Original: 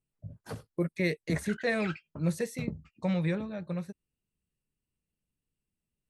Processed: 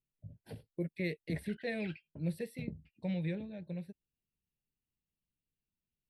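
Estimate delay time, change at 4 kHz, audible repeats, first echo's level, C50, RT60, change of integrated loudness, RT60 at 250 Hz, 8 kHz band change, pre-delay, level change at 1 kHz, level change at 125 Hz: none, -7.5 dB, none, none, none, none, -7.0 dB, none, -14.5 dB, none, -13.0 dB, -6.0 dB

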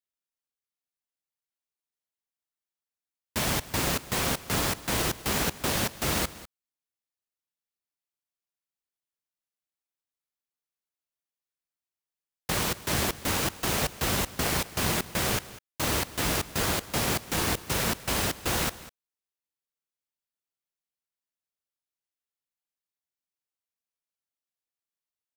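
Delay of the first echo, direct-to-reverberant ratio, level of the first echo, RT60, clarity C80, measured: 0.198 s, none, -18.0 dB, none, none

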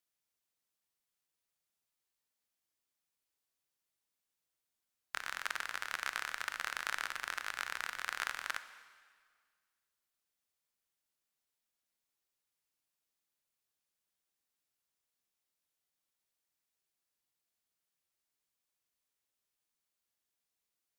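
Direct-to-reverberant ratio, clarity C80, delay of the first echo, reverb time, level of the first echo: 11.0 dB, 14.0 dB, none, 1.8 s, none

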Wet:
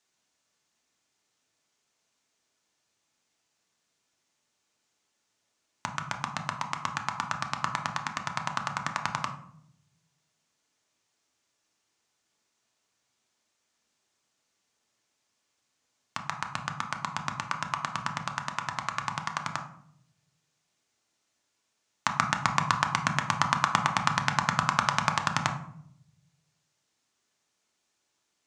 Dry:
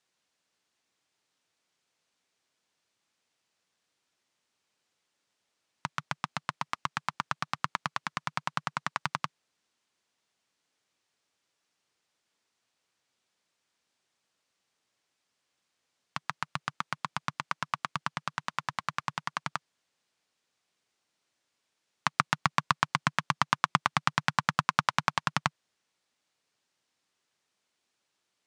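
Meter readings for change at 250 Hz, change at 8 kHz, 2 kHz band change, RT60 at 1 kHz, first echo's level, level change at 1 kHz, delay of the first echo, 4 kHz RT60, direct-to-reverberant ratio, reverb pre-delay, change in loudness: +3.0 dB, +5.5 dB, +1.5 dB, 0.60 s, none, +2.0 dB, none, 0.40 s, 3.5 dB, 3 ms, +2.0 dB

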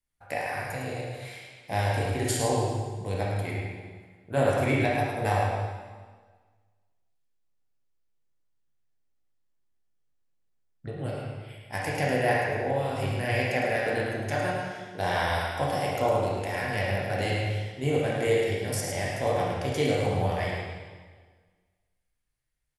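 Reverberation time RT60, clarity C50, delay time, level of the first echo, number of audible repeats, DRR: 1.5 s, -1.5 dB, 0.107 s, -5.0 dB, 1, -5.0 dB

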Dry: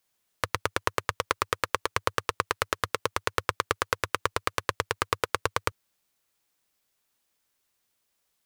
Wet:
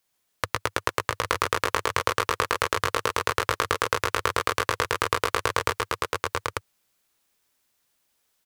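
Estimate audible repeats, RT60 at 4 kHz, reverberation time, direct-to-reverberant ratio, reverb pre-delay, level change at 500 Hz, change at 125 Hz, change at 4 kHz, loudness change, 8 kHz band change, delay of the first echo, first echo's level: 4, none, none, none, none, +4.5 dB, +3.5 dB, +4.0 dB, +3.5 dB, +4.5 dB, 0.126 s, -6.0 dB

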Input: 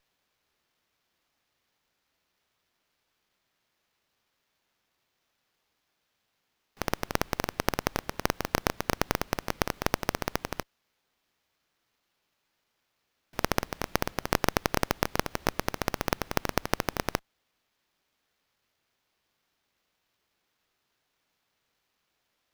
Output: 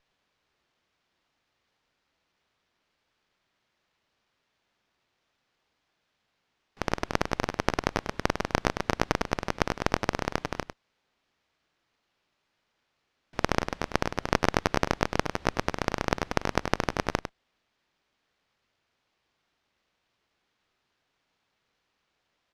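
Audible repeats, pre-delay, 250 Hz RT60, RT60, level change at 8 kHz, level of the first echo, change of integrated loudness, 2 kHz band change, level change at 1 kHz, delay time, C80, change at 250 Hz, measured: 1, none, none, none, -3.5 dB, -9.0 dB, +1.5 dB, +2.0 dB, +2.0 dB, 0.101 s, none, +2.5 dB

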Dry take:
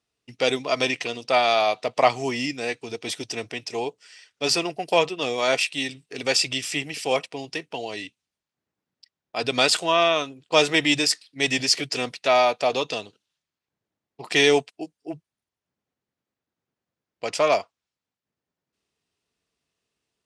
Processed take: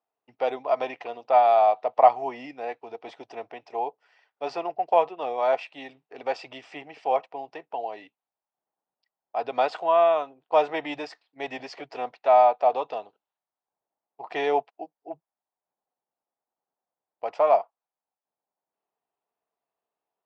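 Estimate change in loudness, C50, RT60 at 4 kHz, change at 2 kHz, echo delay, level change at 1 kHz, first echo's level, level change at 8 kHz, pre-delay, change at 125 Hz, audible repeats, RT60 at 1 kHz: -1.5 dB, none, none, -12.5 dB, none, +3.5 dB, none, under -30 dB, none, under -15 dB, none, none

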